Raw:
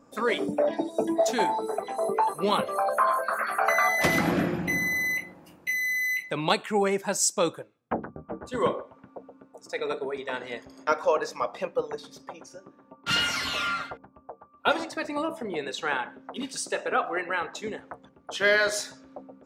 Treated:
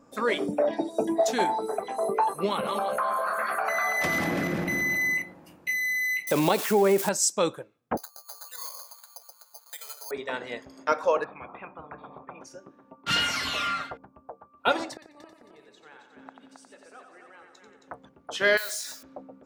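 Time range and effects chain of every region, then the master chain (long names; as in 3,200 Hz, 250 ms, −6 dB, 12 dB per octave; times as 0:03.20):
0:02.46–0:05.22: feedback delay that plays each chunk backwards 168 ms, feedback 48%, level −7 dB + downward compressor 3 to 1, threshold −24 dBFS
0:06.27–0:07.09: spike at every zero crossing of −22.5 dBFS + parametric band 430 Hz +9.5 dB 2.7 octaves + downward compressor 3 to 1, threshold −18 dBFS
0:07.97–0:10.11: high-pass filter 800 Hz 24 dB per octave + downward compressor 4 to 1, threshold −47 dBFS + bad sample-rate conversion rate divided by 8×, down filtered, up zero stuff
0:11.24–0:12.41: formant resonators in series a + high-frequency loss of the air 94 metres + every bin compressed towards the loudest bin 10 to 1
0:14.93–0:17.88: gate with flip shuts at −28 dBFS, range −24 dB + echo machine with several playback heads 90 ms, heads first and third, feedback 53%, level −7 dB
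0:18.57–0:19.03: noise that follows the level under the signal 17 dB + spectral tilt +4.5 dB per octave + downward compressor 8 to 1, threshold −30 dBFS
whole clip: no processing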